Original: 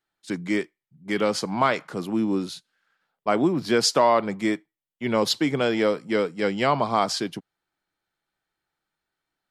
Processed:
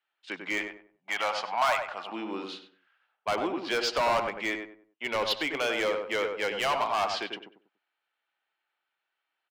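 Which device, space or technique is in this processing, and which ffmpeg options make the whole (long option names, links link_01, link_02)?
megaphone: -filter_complex "[0:a]highpass=650,lowpass=3000,equalizer=frequency=2800:width_type=o:width=0.55:gain=9,asoftclip=type=hard:threshold=-23dB,asettb=1/sr,asplit=3[link_01][link_02][link_03];[link_01]atrim=end=0.584[link_04];[link_02]atrim=start=0.58:end=2.12,asetpts=PTS-STARTPTS,afade=type=in:duration=0.004:curve=qsin,afade=type=out:start_time=1.536:duration=0.004:curve=qsin,lowshelf=frequency=540:width_type=q:width=3:gain=-7[link_05];[link_03]atrim=start=2.116[link_06];[link_04][link_05]acrossfade=duration=0.004:curve1=hsin:curve2=qsin[link_07];[link_07][link_06]acrossfade=duration=0.004:curve1=qsin:curve2=hsin,asplit=2[link_08][link_09];[link_09]adelay=96,lowpass=frequency=1300:poles=1,volume=-4dB,asplit=2[link_10][link_11];[link_11]adelay=96,lowpass=frequency=1300:poles=1,volume=0.33,asplit=2[link_12][link_13];[link_13]adelay=96,lowpass=frequency=1300:poles=1,volume=0.33,asplit=2[link_14][link_15];[link_15]adelay=96,lowpass=frequency=1300:poles=1,volume=0.33[link_16];[link_08][link_10][link_12][link_14][link_16]amix=inputs=5:normalize=0"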